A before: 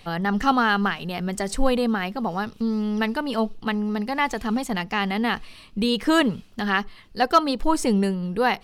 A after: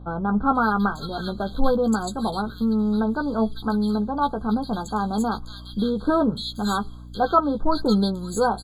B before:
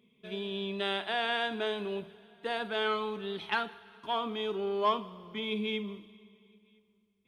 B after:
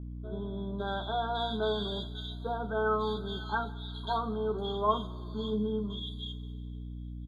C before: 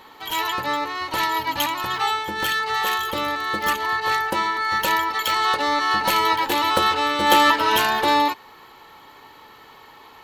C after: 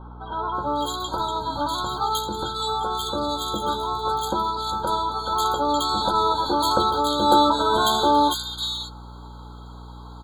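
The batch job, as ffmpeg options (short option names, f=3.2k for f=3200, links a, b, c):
-filter_complex "[0:a]asplit=2[a][b];[b]adelay=14,volume=-7dB[c];[a][c]amix=inputs=2:normalize=0,aeval=exprs='val(0)+0.0112*(sin(2*PI*60*n/s)+sin(2*PI*2*60*n/s)/2+sin(2*PI*3*60*n/s)/3+sin(2*PI*4*60*n/s)/4+sin(2*PI*5*60*n/s)/5)':c=same,acrossover=split=2200[d][e];[e]adelay=550[f];[d][f]amix=inputs=2:normalize=0,afftfilt=real='re*eq(mod(floor(b*sr/1024/1600),2),0)':imag='im*eq(mod(floor(b*sr/1024/1600),2),0)':win_size=1024:overlap=0.75"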